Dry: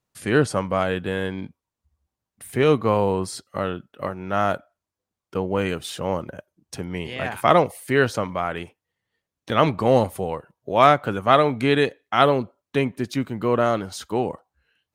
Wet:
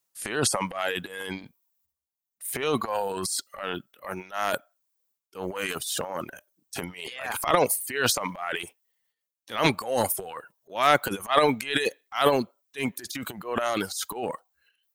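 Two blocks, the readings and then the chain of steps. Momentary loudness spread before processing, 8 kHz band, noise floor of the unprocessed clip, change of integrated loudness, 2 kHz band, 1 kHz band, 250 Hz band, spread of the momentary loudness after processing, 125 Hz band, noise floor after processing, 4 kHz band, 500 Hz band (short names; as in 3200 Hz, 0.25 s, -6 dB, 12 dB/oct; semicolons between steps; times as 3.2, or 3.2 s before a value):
14 LU, +8.5 dB, under -85 dBFS, -5.0 dB, -2.5 dB, -5.5 dB, -8.0 dB, 15 LU, -11.5 dB, under -85 dBFS, +1.0 dB, -7.0 dB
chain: RIAA curve recording; transient shaper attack -10 dB, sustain +12 dB; reverb removal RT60 1.6 s; gain -4 dB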